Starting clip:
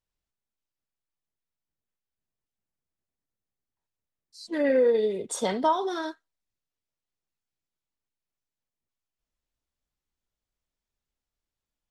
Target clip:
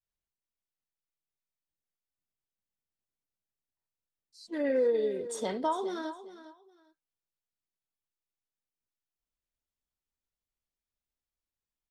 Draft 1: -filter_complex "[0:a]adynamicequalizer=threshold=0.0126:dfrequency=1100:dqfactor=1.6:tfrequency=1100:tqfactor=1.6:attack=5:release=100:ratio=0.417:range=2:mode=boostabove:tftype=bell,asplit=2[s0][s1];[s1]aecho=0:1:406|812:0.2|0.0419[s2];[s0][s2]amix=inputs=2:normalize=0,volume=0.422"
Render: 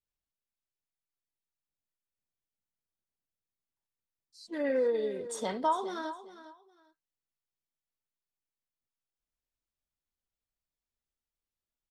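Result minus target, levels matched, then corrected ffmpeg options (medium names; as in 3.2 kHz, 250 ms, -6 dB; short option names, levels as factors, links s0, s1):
1 kHz band +3.5 dB
-filter_complex "[0:a]adynamicequalizer=threshold=0.0126:dfrequency=370:dqfactor=1.6:tfrequency=370:tqfactor=1.6:attack=5:release=100:ratio=0.417:range=2:mode=boostabove:tftype=bell,asplit=2[s0][s1];[s1]aecho=0:1:406|812:0.2|0.0419[s2];[s0][s2]amix=inputs=2:normalize=0,volume=0.422"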